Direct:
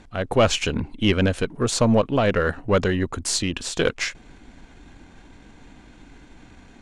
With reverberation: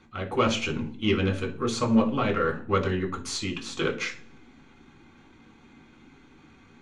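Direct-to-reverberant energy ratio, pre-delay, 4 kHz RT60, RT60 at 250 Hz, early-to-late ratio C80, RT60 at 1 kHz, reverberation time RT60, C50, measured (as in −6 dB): 0.0 dB, 3 ms, 0.45 s, 0.65 s, 18.0 dB, 0.40 s, 0.45 s, 13.0 dB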